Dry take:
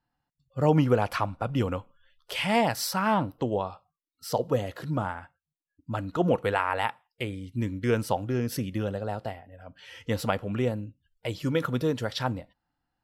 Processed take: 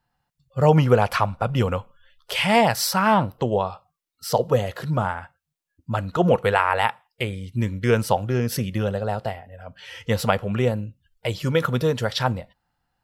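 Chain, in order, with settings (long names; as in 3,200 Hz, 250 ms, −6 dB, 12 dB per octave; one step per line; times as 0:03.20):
parametric band 290 Hz −13 dB 0.3 octaves
level +7 dB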